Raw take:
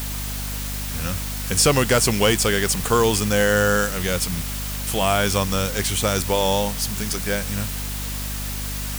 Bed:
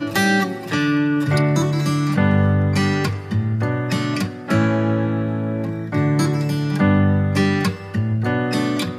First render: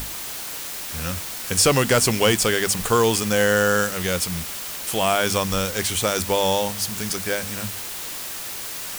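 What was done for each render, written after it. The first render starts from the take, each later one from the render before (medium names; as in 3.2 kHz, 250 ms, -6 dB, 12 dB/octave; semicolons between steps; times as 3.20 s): hum notches 50/100/150/200/250 Hz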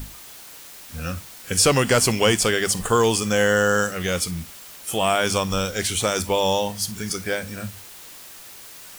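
noise print and reduce 10 dB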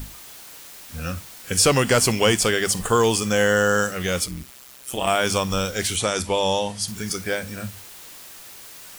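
4.26–5.07 s: AM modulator 130 Hz, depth 75%; 5.96–6.88 s: Chebyshev low-pass 11 kHz, order 6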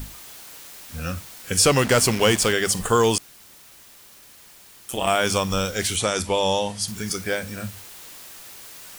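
1.78–2.53 s: send-on-delta sampling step -27.5 dBFS; 3.18–4.89 s: room tone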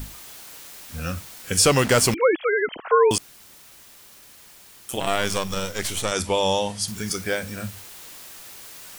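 2.14–3.11 s: formants replaced by sine waves; 5.00–6.12 s: partial rectifier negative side -12 dB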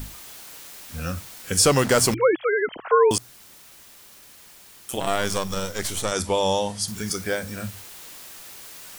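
hum notches 60/120 Hz; dynamic bell 2.6 kHz, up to -5 dB, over -40 dBFS, Q 1.8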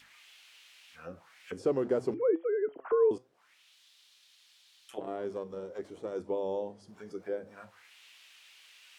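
auto-wah 380–4500 Hz, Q 2.3, down, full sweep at -24 dBFS; flange 0.82 Hz, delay 5.8 ms, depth 2.8 ms, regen +82%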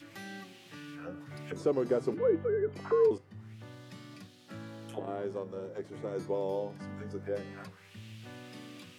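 add bed -28 dB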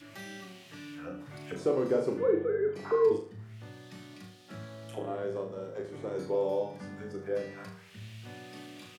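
doubling 26 ms -11 dB; flutter echo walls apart 6.5 m, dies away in 0.43 s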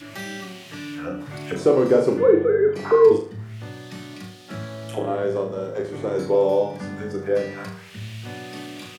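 trim +11 dB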